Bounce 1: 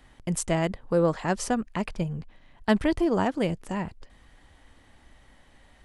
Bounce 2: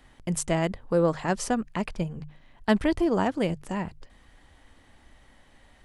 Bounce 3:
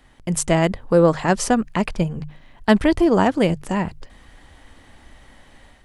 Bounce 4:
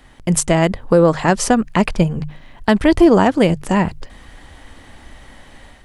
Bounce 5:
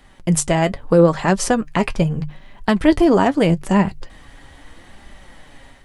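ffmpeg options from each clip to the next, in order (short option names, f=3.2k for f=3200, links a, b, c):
-af "bandreject=f=50:t=h:w=6,bandreject=f=100:t=h:w=6,bandreject=f=150:t=h:w=6"
-af "dynaudnorm=f=210:g=3:m=6.5dB,volume=2dB"
-af "alimiter=limit=-8dB:level=0:latency=1:release=299,volume=6.5dB"
-af "flanger=delay=5:depth=2.4:regen=56:speed=0.79:shape=sinusoidal,volume=2dB"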